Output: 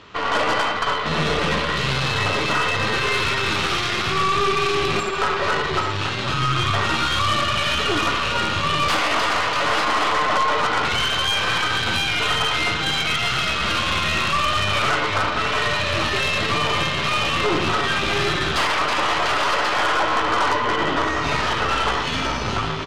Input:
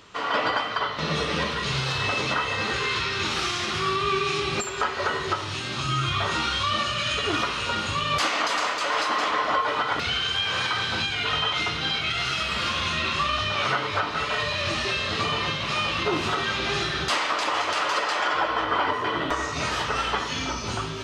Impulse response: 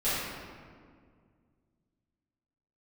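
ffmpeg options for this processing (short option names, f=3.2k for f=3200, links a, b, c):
-filter_complex "[0:a]lowpass=4.1k,asplit=2[a][b];[b]aecho=0:1:40|69|101|474|762:0.211|0.266|0.282|0.112|0.299[c];[a][c]amix=inputs=2:normalize=0,aeval=exprs='0.299*(cos(1*acos(clip(val(0)/0.299,-1,1)))-cos(1*PI/2))+0.0531*(cos(5*acos(clip(val(0)/0.299,-1,1)))-cos(5*PI/2))+0.0133*(cos(6*acos(clip(val(0)/0.299,-1,1)))-cos(6*PI/2))+0.0473*(cos(8*acos(clip(val(0)/0.299,-1,1)))-cos(8*PI/2))':c=same,atempo=0.92"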